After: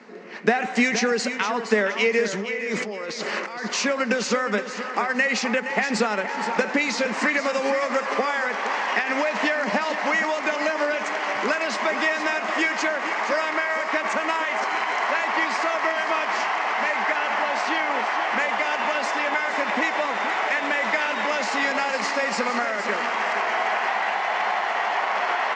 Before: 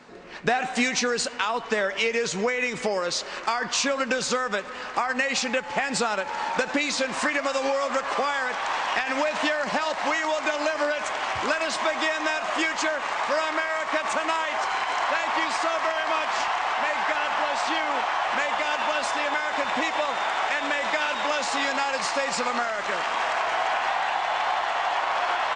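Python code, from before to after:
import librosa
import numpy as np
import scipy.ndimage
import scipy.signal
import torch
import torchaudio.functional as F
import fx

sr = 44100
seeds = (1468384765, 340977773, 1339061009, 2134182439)

y = fx.over_compress(x, sr, threshold_db=-33.0, ratio=-1.0, at=(2.26, 3.64))
y = fx.cabinet(y, sr, low_hz=180.0, low_slope=24, high_hz=6900.0, hz=(210.0, 420.0, 2000.0, 3600.0), db=(10, 7, 6, -5))
y = fx.echo_feedback(y, sr, ms=468, feedback_pct=30, wet_db=-10.0)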